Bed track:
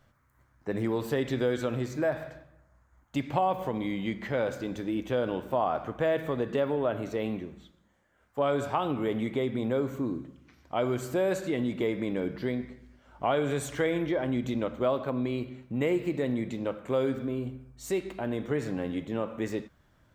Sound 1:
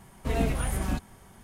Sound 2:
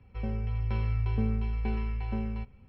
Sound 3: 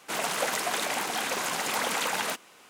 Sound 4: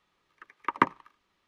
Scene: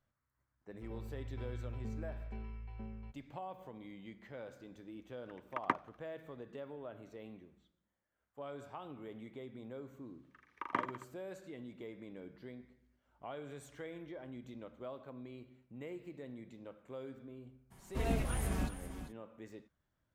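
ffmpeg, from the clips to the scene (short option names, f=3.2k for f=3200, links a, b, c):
-filter_complex "[4:a]asplit=2[a][b];[0:a]volume=-19dB[c];[2:a]lowpass=f=3.5k:p=1[d];[b]aecho=1:1:40|86|138.9|199.7|269.7:0.631|0.398|0.251|0.158|0.1[e];[1:a]aecho=1:1:395:0.282[f];[d]atrim=end=2.68,asetpts=PTS-STARTPTS,volume=-14.5dB,afade=t=in:d=0.004:c=hsin,afade=t=out:st=2.676:d=0.004:c=hsin,adelay=670[g];[a]atrim=end=1.47,asetpts=PTS-STARTPTS,volume=-10.5dB,afade=t=in:d=0.004:c=hsin,afade=t=out:st=1.466:d=0.004:c=hsin,adelay=4880[h];[e]atrim=end=1.47,asetpts=PTS-STARTPTS,volume=-13.5dB,afade=t=in:d=0.004:c=hsin,afade=t=out:st=1.466:d=0.004:c=hsin,adelay=9930[i];[f]atrim=end=1.43,asetpts=PTS-STARTPTS,volume=-7.5dB,afade=t=in:d=0.02,afade=t=out:st=1.41:d=0.02,adelay=17700[j];[c][g][h][i][j]amix=inputs=5:normalize=0"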